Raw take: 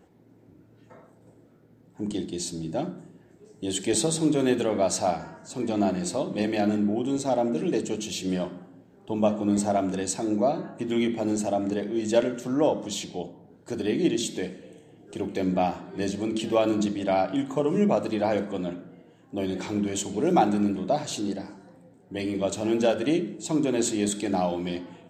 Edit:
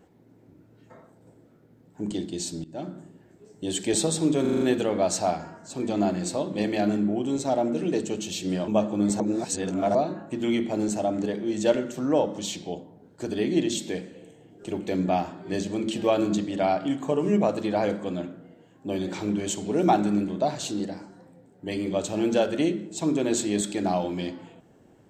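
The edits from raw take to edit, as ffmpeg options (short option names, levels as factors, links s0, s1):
-filter_complex "[0:a]asplit=10[s0][s1][s2][s3][s4][s5][s6][s7][s8][s9];[s0]atrim=end=2.64,asetpts=PTS-STARTPTS,afade=t=out:st=2.636:d=0.004:c=hsin:silence=0.0891251[s10];[s1]atrim=start=2.64:end=4.452,asetpts=PTS-STARTPTS,afade=t=in:d=0.34:silence=0.0891251[s11];[s2]atrim=start=4.408:end=4.452[s12];[s3]atrim=start=4.408:end=4.452[s13];[s4]atrim=start=4.408:end=4.452[s14];[s5]atrim=start=4.408:end=4.452[s15];[s6]atrim=start=4.408:end=8.482[s16];[s7]atrim=start=9.158:end=9.682[s17];[s8]atrim=start=9.678:end=10.432,asetpts=PTS-STARTPTS,areverse[s18];[s9]atrim=start=10.428[s19];[s10][s11]concat=n=2:v=0:a=1[s20];[s20][s12]acrossfade=d=0.004:c1=hsin:c2=hsin[s21];[s21][s13]acrossfade=d=0.004:c1=hsin:c2=hsin[s22];[s22][s14]acrossfade=d=0.004:c1=hsin:c2=hsin[s23];[s23][s15]acrossfade=d=0.004:c1=hsin:c2=hsin[s24];[s24][s16]acrossfade=d=0.004:c1=hsin:c2=hsin[s25];[s25][s17]acrossfade=d=0.004:c1=hsin:c2=hsin[s26];[s26][s18]acrossfade=d=0.004:c1=hsin:c2=hsin[s27];[s27][s19]acrossfade=d=0.004:c1=hsin:c2=hsin"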